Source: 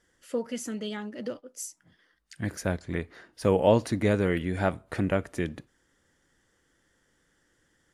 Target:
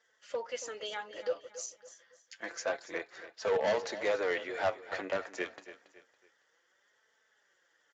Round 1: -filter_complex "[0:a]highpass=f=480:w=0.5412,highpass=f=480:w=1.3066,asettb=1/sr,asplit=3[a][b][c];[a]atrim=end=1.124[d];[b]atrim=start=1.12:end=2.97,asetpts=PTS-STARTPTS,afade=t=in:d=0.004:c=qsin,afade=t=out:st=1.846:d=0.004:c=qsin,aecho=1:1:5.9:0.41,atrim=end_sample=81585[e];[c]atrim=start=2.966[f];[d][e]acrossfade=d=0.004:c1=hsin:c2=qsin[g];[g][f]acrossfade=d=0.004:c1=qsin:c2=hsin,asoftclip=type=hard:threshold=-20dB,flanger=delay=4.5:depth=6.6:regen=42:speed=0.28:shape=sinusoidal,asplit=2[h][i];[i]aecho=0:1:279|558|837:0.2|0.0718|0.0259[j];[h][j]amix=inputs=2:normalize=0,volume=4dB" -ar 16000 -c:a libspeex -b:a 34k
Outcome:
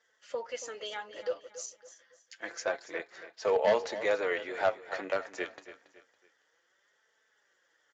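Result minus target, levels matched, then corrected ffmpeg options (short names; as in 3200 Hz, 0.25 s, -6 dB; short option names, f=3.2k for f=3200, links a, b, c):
hard clip: distortion -6 dB
-filter_complex "[0:a]highpass=f=480:w=0.5412,highpass=f=480:w=1.3066,asettb=1/sr,asplit=3[a][b][c];[a]atrim=end=1.124[d];[b]atrim=start=1.12:end=2.97,asetpts=PTS-STARTPTS,afade=t=in:d=0.004:c=qsin,afade=t=out:st=1.846:d=0.004:c=qsin,aecho=1:1:5.9:0.41,atrim=end_sample=81585[e];[c]atrim=start=2.966[f];[d][e]acrossfade=d=0.004:c1=hsin:c2=qsin[g];[g][f]acrossfade=d=0.004:c1=qsin:c2=hsin,asoftclip=type=hard:threshold=-26dB,flanger=delay=4.5:depth=6.6:regen=42:speed=0.28:shape=sinusoidal,asplit=2[h][i];[i]aecho=0:1:279|558|837:0.2|0.0718|0.0259[j];[h][j]amix=inputs=2:normalize=0,volume=4dB" -ar 16000 -c:a libspeex -b:a 34k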